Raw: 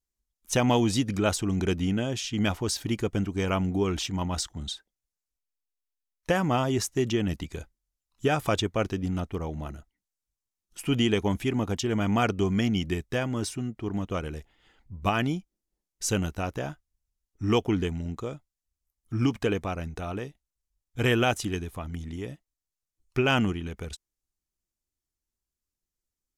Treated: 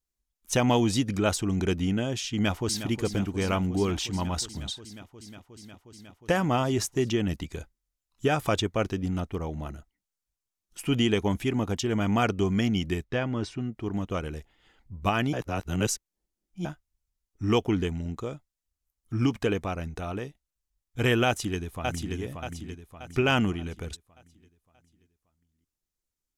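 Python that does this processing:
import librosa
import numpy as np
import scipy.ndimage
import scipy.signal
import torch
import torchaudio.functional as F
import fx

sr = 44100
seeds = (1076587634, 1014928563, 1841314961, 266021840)

y = fx.echo_throw(x, sr, start_s=2.3, length_s=0.59, ms=360, feedback_pct=85, wet_db=-11.5)
y = fx.lowpass(y, sr, hz=3900.0, slope=12, at=(13.04, 13.72))
y = fx.echo_throw(y, sr, start_s=21.26, length_s=0.9, ms=580, feedback_pct=45, wet_db=-4.5)
y = fx.edit(y, sr, fx.reverse_span(start_s=15.33, length_s=1.32), tone=tone)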